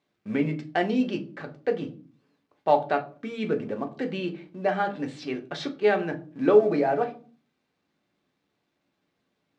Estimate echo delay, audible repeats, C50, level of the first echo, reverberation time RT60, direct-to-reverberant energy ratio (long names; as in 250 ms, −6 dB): no echo audible, no echo audible, 15.5 dB, no echo audible, 0.40 s, 3.5 dB